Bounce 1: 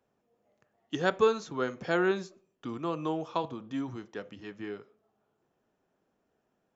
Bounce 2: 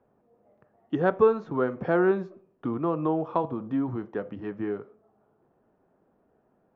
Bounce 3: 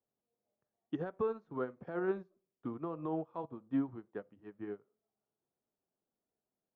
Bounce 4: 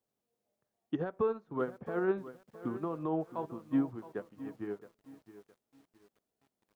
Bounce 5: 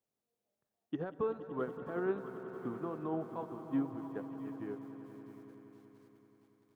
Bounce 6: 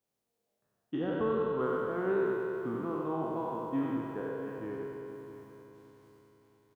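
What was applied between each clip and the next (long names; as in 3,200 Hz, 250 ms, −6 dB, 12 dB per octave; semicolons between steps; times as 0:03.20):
low-pass filter 1,200 Hz 12 dB per octave; in parallel at +1.5 dB: downward compressor, threshold −37 dBFS, peak gain reduction 16.5 dB; on the sum: level +3 dB
brickwall limiter −19 dBFS, peak gain reduction 10 dB; expander for the loud parts 2.5 to 1, over −38 dBFS; level −4.5 dB
feedback echo at a low word length 666 ms, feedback 35%, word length 10 bits, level −14.5 dB; level +3.5 dB
echo that builds up and dies away 95 ms, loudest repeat 5, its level −16.5 dB; on a send at −20.5 dB: convolution reverb RT60 1.1 s, pre-delay 143 ms; on the sum: level −4 dB
peak hold with a decay on every bin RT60 2.96 s; single-tap delay 93 ms −6 dB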